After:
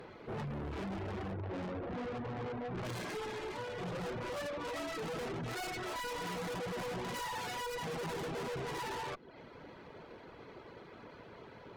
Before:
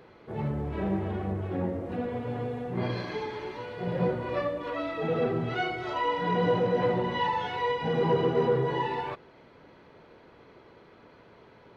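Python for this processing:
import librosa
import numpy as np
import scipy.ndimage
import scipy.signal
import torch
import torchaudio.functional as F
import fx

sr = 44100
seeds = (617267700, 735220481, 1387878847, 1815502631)

y = fx.tracing_dist(x, sr, depth_ms=0.25)
y = fx.lowpass(y, sr, hz=1700.0, slope=12, at=(1.32, 2.85))
y = fx.tube_stage(y, sr, drive_db=42.0, bias=0.45)
y = fx.dereverb_blind(y, sr, rt60_s=0.54)
y = F.gain(torch.from_numpy(y), 5.0).numpy()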